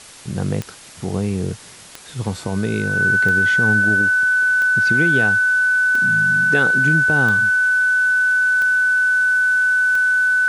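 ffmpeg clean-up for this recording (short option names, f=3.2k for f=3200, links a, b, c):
-af "adeclick=t=4,bandreject=f=1.5k:w=30,afwtdn=0.011"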